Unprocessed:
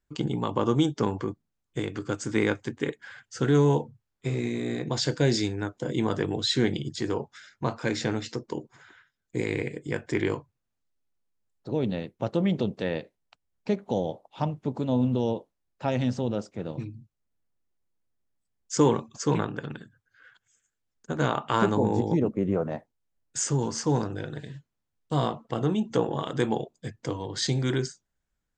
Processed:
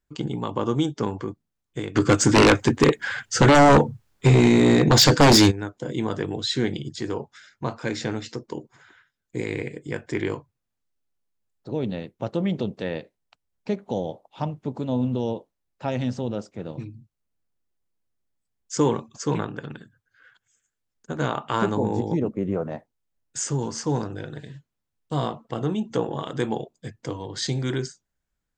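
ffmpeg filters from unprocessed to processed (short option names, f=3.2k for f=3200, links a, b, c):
-filter_complex "[0:a]asplit=3[a][b][c];[a]afade=t=out:st=1.95:d=0.02[d];[b]aeval=exprs='0.335*sin(PI/2*3.98*val(0)/0.335)':c=same,afade=t=in:st=1.95:d=0.02,afade=t=out:st=5.5:d=0.02[e];[c]afade=t=in:st=5.5:d=0.02[f];[d][e][f]amix=inputs=3:normalize=0"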